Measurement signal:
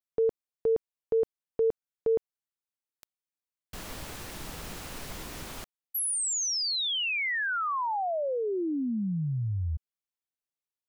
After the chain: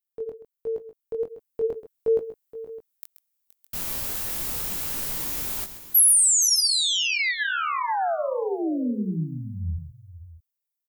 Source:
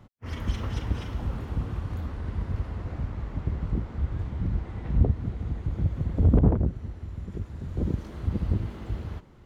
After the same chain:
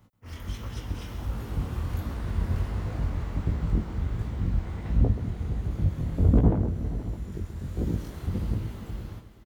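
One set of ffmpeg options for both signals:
ffmpeg -i in.wav -af "aemphasis=mode=production:type=50fm,dynaudnorm=framelen=420:gausssize=7:maxgain=10dB,flanger=delay=17.5:depth=7.2:speed=1.4,aecho=1:1:130|472|612:0.237|0.168|0.133,volume=-4dB" out.wav

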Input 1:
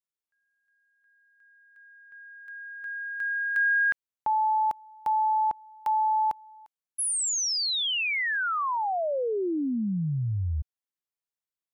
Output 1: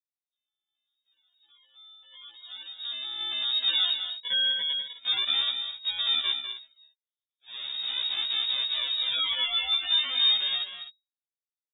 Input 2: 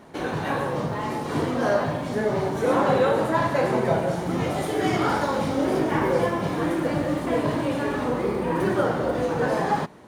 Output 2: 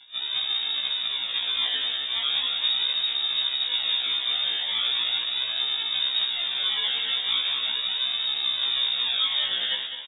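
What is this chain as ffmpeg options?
ffmpeg -i in.wav -filter_complex "[0:a]aemphasis=mode=production:type=50fm,afftdn=noise_reduction=13:noise_floor=-45,lowshelf=frequency=190:gain=10.5,acrossover=split=300|2900[link_01][link_02][link_03];[link_03]acompressor=threshold=-39dB:ratio=6:attack=0.41:release=24:knee=6:detection=rms[link_04];[link_01][link_02][link_04]amix=inputs=3:normalize=0,alimiter=limit=-12dB:level=0:latency=1:release=422,aresample=11025,acrusher=samples=16:mix=1:aa=0.000001:lfo=1:lforange=16:lforate=0.39,aresample=44100,asoftclip=type=tanh:threshold=-18.5dB,aecho=1:1:201|256:0.376|0.211,lowpass=frequency=3200:width_type=q:width=0.5098,lowpass=frequency=3200:width_type=q:width=0.6013,lowpass=frequency=3200:width_type=q:width=0.9,lowpass=frequency=3200:width_type=q:width=2.563,afreqshift=-3800,afftfilt=real='re*1.73*eq(mod(b,3),0)':imag='im*1.73*eq(mod(b,3),0)':win_size=2048:overlap=0.75" out.wav

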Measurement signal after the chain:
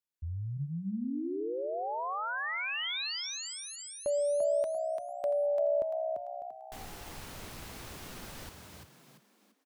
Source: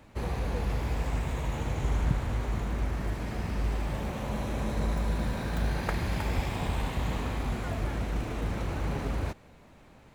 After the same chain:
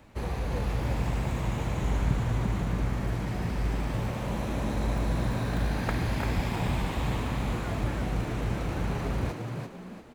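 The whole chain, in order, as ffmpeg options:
ffmpeg -i in.wav -filter_complex "[0:a]asplit=6[link_01][link_02][link_03][link_04][link_05][link_06];[link_02]adelay=342,afreqshift=64,volume=-5dB[link_07];[link_03]adelay=684,afreqshift=128,volume=-13.4dB[link_08];[link_04]adelay=1026,afreqshift=192,volume=-21.8dB[link_09];[link_05]adelay=1368,afreqshift=256,volume=-30.2dB[link_10];[link_06]adelay=1710,afreqshift=320,volume=-38.6dB[link_11];[link_01][link_07][link_08][link_09][link_10][link_11]amix=inputs=6:normalize=0,acrossover=split=4600[link_12][link_13];[link_13]acompressor=threshold=-45dB:ratio=4:attack=1:release=60[link_14];[link_12][link_14]amix=inputs=2:normalize=0" out.wav

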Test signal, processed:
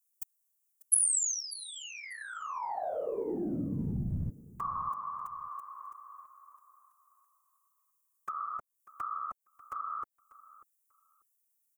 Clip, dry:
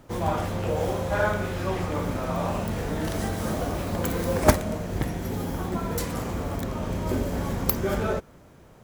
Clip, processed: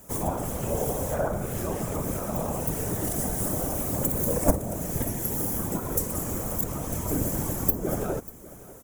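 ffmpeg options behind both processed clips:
ffmpeg -i in.wav -filter_complex "[0:a]afftfilt=real='hypot(re,im)*cos(2*PI*random(0))':imag='hypot(re,im)*sin(2*PI*random(1))':win_size=512:overlap=0.75,acrossover=split=940[link_01][link_02];[link_02]acompressor=threshold=-47dB:ratio=12[link_03];[link_01][link_03]amix=inputs=2:normalize=0,aexciter=amount=10:drive=3.3:freq=6200,aecho=1:1:592|1184:0.112|0.0202,volume=4dB" out.wav

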